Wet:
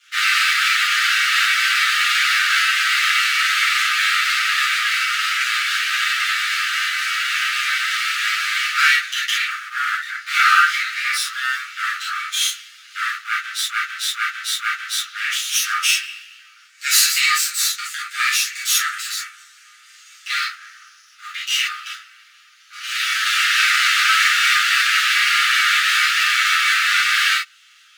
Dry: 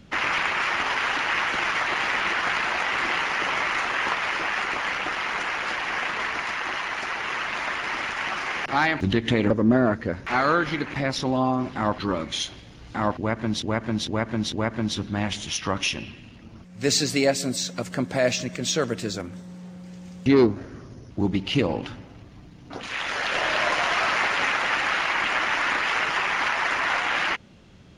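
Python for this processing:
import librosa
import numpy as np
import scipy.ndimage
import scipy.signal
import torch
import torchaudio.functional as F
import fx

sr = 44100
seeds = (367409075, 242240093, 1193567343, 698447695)

y = fx.lower_of_two(x, sr, delay_ms=8.4)
y = scipy.signal.sosfilt(scipy.signal.cheby1(10, 1.0, 1200.0, 'highpass', fs=sr, output='sos'), y)
y = fx.high_shelf(y, sr, hz=7600.0, db=5.0)
y = fx.rev_gated(y, sr, seeds[0], gate_ms=90, shape='flat', drr_db=-7.0)
y = F.gain(torch.from_numpy(y), 3.0).numpy()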